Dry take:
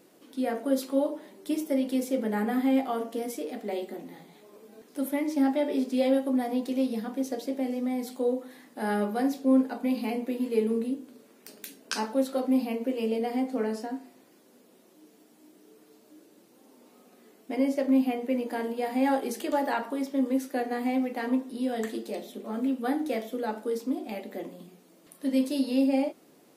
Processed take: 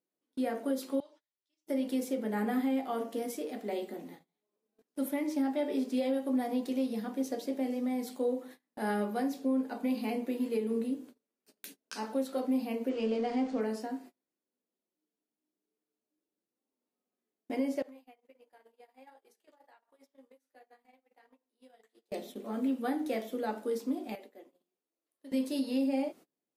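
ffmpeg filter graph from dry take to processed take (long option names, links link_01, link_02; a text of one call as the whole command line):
ffmpeg -i in.wav -filter_complex "[0:a]asettb=1/sr,asplit=3[link_01][link_02][link_03];[link_01]atrim=end=1.004[link_04];[link_02]atrim=start=1:end=1.67,asetpts=PTS-STARTPTS,afade=type=in:duration=0.004:curve=qsin,afade=type=out:start_time=0.666:duration=0.004:curve=qsin,lowpass=frequency=5700:width=0.5412,lowpass=frequency=5700:width=1.3066,aderivative[link_05];[link_03]atrim=start=1.666[link_06];[link_04][link_05]acrossfade=duration=0.004:curve1=hsin:curve2=qsin[link_07];[link_07][link_06]acrossfade=duration=0.004:curve1=qsin:curve2=hsin,asettb=1/sr,asplit=3[link_08][link_09][link_10];[link_08]atrim=end=12.894[link_11];[link_09]atrim=start=12.89:end=13.61,asetpts=PTS-STARTPTS,afade=type=in:duration=0.004:curve=qsin,afade=type=out:start_time=0.716:duration=0.004:curve=qsin,aeval=exprs='val(0)+0.5*0.00794*sgn(val(0))':channel_layout=same,lowpass=frequency=6900:width=0.5412,lowpass=frequency=6900:width=1.3066[link_12];[link_10]atrim=start=13.606[link_13];[link_11][link_12]acrossfade=duration=0.004:curve1=hsin:curve2=qsin[link_14];[link_14][link_13]acrossfade=duration=0.004:curve1=qsin:curve2=hsin,asettb=1/sr,asplit=3[link_15][link_16][link_17];[link_15]atrim=end=17.824[link_18];[link_16]atrim=start=17.82:end=22.12,asetpts=PTS-STARTPTS,afade=type=in:duration=0.004:curve=qsin,afade=type=out:start_time=4.296:duration=0.004:curve=qsin,highpass=520,acompressor=threshold=-40dB:ratio=10:attack=3.2:release=140:knee=1:detection=peak,flanger=delay=5.3:depth=8.8:regen=-47:speed=1.4:shape=triangular[link_19];[link_17]atrim=start=22.116[link_20];[link_18][link_19]acrossfade=duration=0.004:curve1=hsin:curve2=qsin[link_21];[link_21][link_20]acrossfade=duration=0.004:curve1=qsin:curve2=hsin,asettb=1/sr,asplit=3[link_22][link_23][link_24];[link_22]atrim=end=24.154[link_25];[link_23]atrim=start=24.15:end=25.32,asetpts=PTS-STARTPTS,afade=type=in:duration=0.004:curve=qsin,afade=type=out:start_time=1.166:duration=0.004:curve=qsin,highpass=frequency=280:width=0.5412,highpass=frequency=280:width=1.3066,acompressor=threshold=-44dB:ratio=4:attack=3.2:release=140:knee=1:detection=peak[link_26];[link_24]atrim=start=25.316[link_27];[link_25][link_26]acrossfade=duration=0.004:curve1=hsin:curve2=qsin[link_28];[link_28][link_27]acrossfade=duration=0.004:curve1=qsin:curve2=hsin,agate=range=-31dB:threshold=-45dB:ratio=16:detection=peak,alimiter=limit=-19.5dB:level=0:latency=1:release=223,volume=-3dB" out.wav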